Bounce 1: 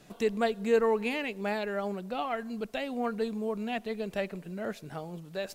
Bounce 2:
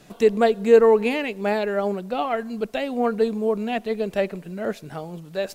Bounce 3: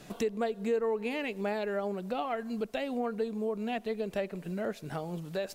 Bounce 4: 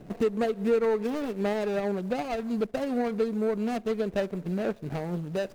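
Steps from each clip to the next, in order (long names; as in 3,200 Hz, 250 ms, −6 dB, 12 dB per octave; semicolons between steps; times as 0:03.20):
dynamic equaliser 430 Hz, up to +6 dB, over −37 dBFS, Q 0.73; level +5.5 dB
downward compressor 3 to 1, threshold −33 dBFS, peak gain reduction 17.5 dB
running median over 41 samples; level +6.5 dB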